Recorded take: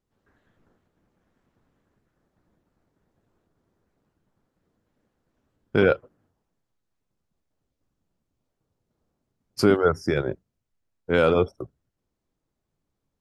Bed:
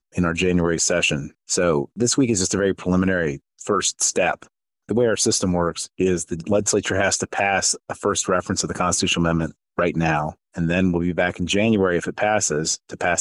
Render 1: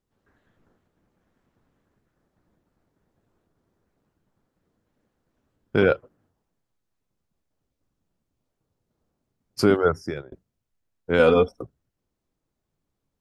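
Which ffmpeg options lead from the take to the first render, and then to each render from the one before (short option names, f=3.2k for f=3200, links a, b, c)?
-filter_complex "[0:a]asettb=1/sr,asplit=3[a][b][c];[a]atrim=end=11.194[d];[b]atrim=start=11.19:end=11.63,asetpts=PTS-STARTPTS,afade=t=in:d=0.004:c=qsin,afade=t=out:st=0.436:d=0.004:c=qsin,aecho=1:1:4.1:0.81,atrim=end_sample=19404[e];[c]atrim=start=11.626[f];[d][e]acrossfade=d=0.004:c1=hsin:c2=qsin[g];[g][f]acrossfade=d=0.004:c1=qsin:c2=hsin,asplit=2[h][i];[h]atrim=end=10.32,asetpts=PTS-STARTPTS,afade=t=out:st=9.87:d=0.45[j];[i]atrim=start=10.32,asetpts=PTS-STARTPTS,afade=t=in:d=0.004:c=hsin[k];[j][k]concat=n=2:v=0:a=1"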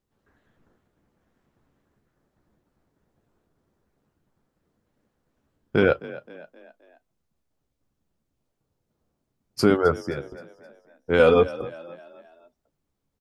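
-filter_complex "[0:a]asplit=2[a][b];[b]adelay=14,volume=-12.5dB[c];[a][c]amix=inputs=2:normalize=0,asplit=5[d][e][f][g][h];[e]adelay=262,afreqshift=41,volume=-18dB[i];[f]adelay=524,afreqshift=82,volume=-24.7dB[j];[g]adelay=786,afreqshift=123,volume=-31.5dB[k];[h]adelay=1048,afreqshift=164,volume=-38.2dB[l];[d][i][j][k][l]amix=inputs=5:normalize=0"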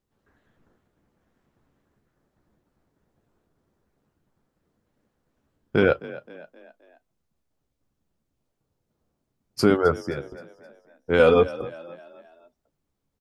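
-af anull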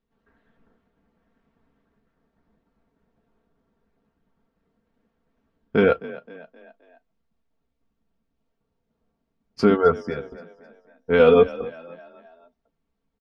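-af "lowpass=3.7k,aecho=1:1:4.4:0.6"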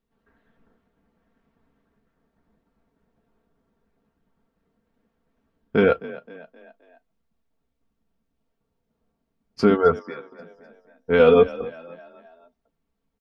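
-filter_complex "[0:a]asettb=1/sr,asplit=3[a][b][c];[a]atrim=end=9.994[d];[b]atrim=start=9.99:end=10.39,asetpts=PTS-STARTPTS,afade=t=in:d=0.004:c=qsin,afade=t=out:st=0.396:d=0.004:c=qsin,highpass=350,equalizer=f=440:t=q:w=4:g=-7,equalizer=f=670:t=q:w=4:g=-9,equalizer=f=1.1k:t=q:w=4:g=8,equalizer=f=1.6k:t=q:w=4:g=-5,equalizer=f=2.9k:t=q:w=4:g=-9,lowpass=f=4.2k:w=0.5412,lowpass=f=4.2k:w=1.3066[e];[c]atrim=start=10.386[f];[d][e]acrossfade=d=0.004:c1=hsin:c2=qsin[g];[g][f]acrossfade=d=0.004:c1=qsin:c2=hsin"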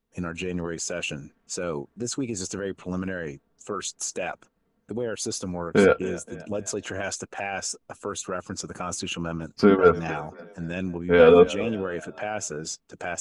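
-filter_complex "[1:a]volume=-11dB[a];[0:a][a]amix=inputs=2:normalize=0"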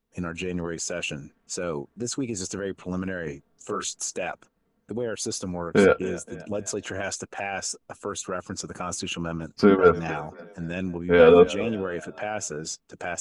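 -filter_complex "[0:a]asettb=1/sr,asplit=3[a][b][c];[a]atrim=end=3.244[d];[b]atrim=start=3.24:end=4.01,asetpts=PTS-STARTPTS,afade=t=in:d=0.004:c=qsin,afade=t=out:st=0.766:d=0.004:c=qsin,asplit=2[e][f];[f]adelay=26,volume=-4dB[g];[e][g]amix=inputs=2:normalize=0,atrim=end_sample=33957[h];[c]atrim=start=4.006[i];[d][h]acrossfade=d=0.004:c1=hsin:c2=qsin[j];[j][i]acrossfade=d=0.004:c1=qsin:c2=hsin"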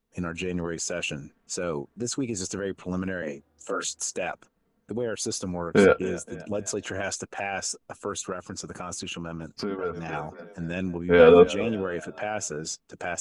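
-filter_complex "[0:a]asettb=1/sr,asplit=3[a][b][c];[a]atrim=end=3.224[d];[b]atrim=start=3.22:end=4.15,asetpts=PTS-STARTPTS,afade=t=in:d=0.004:c=qsin,afade=t=out:st=0.926:d=0.004:c=qsin,afreqshift=72[e];[c]atrim=start=4.146[f];[d][e]acrossfade=d=0.004:c1=hsin:c2=qsin[g];[g][f]acrossfade=d=0.004:c1=qsin:c2=hsin,asettb=1/sr,asplit=3[h][i][j];[h]atrim=end=8.324[k];[i]atrim=start=8.32:end=10.13,asetpts=PTS-STARTPTS,afade=t=in:d=0.004:c=qsin,afade=t=out:st=1.806:d=0.004:c=qsin,acompressor=threshold=-31dB:ratio=3:attack=3.2:release=140:knee=1:detection=peak[l];[j]atrim=start=10.126[m];[k][l]acrossfade=d=0.004:c1=hsin:c2=qsin[n];[n][m]acrossfade=d=0.004:c1=qsin:c2=hsin"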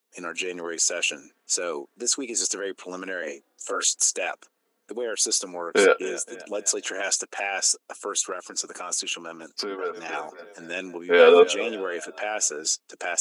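-af "highpass=f=300:w=0.5412,highpass=f=300:w=1.3066,highshelf=f=2.4k:g=10.5"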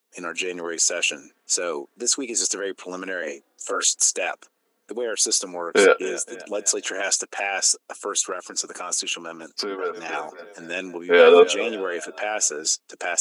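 -af "volume=2.5dB,alimiter=limit=-3dB:level=0:latency=1"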